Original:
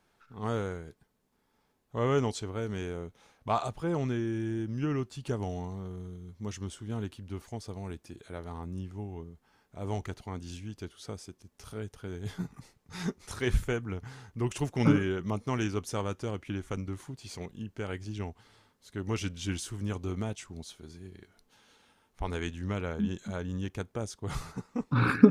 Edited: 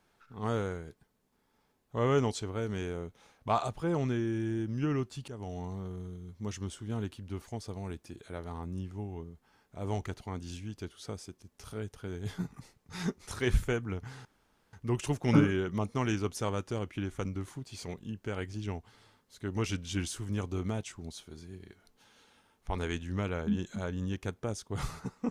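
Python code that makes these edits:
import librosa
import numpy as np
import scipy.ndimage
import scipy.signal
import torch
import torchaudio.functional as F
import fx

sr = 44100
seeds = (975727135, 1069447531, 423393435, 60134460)

y = fx.edit(x, sr, fx.fade_in_from(start_s=5.28, length_s=0.44, floor_db=-14.5),
    fx.insert_room_tone(at_s=14.25, length_s=0.48), tone=tone)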